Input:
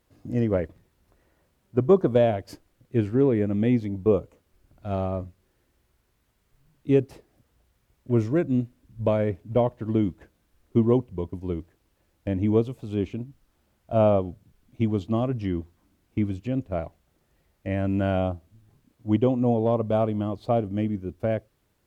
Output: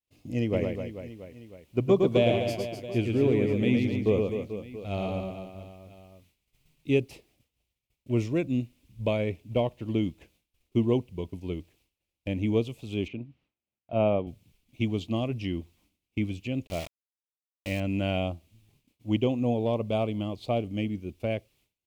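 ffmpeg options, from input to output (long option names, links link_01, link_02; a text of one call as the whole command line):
ffmpeg -i in.wav -filter_complex "[0:a]asplit=3[link_01][link_02][link_03];[link_01]afade=type=out:start_time=0.52:duration=0.02[link_04];[link_02]aecho=1:1:110|253|438.9|680.6|994.7:0.631|0.398|0.251|0.158|0.1,afade=type=in:start_time=0.52:duration=0.02,afade=type=out:start_time=6.98:duration=0.02[link_05];[link_03]afade=type=in:start_time=6.98:duration=0.02[link_06];[link_04][link_05][link_06]amix=inputs=3:normalize=0,asettb=1/sr,asplit=3[link_07][link_08][link_09];[link_07]atrim=end=13.084[link_10];[link_08]atrim=start=13.08:end=14.27,asetpts=PTS-STARTPTS,afade=type=in:duration=0.004:curve=qsin,afade=type=out:start_time=1.186:duration=0.004:curve=qsin,highpass=100,lowpass=2300[link_11];[link_09]atrim=start=14.266[link_12];[link_10][link_11]acrossfade=duration=0.004:curve1=hsin:curve2=qsin[link_13];[link_13][link_12]acrossfade=duration=0.004:curve1=qsin:curve2=hsin,asettb=1/sr,asplit=3[link_14][link_15][link_16];[link_14]atrim=end=16.674[link_17];[link_15]atrim=start=16.67:end=17.8,asetpts=PTS-STARTPTS,afade=type=in:duration=0.004:curve=qsin,afade=type=out:start_time=1.126:duration=0.004:curve=qsin,aeval=exprs='val(0)*gte(abs(val(0)),0.0158)':channel_layout=same[link_18];[link_16]atrim=start=17.796[link_19];[link_17][link_18]acrossfade=duration=0.004:curve1=hsin:curve2=qsin[link_20];[link_20][link_19]acrossfade=duration=0.004:curve1=qsin:curve2=hsin,agate=range=-33dB:threshold=-56dB:ratio=3:detection=peak,highshelf=frequency=2000:width_type=q:width=3:gain=7,volume=-4dB" out.wav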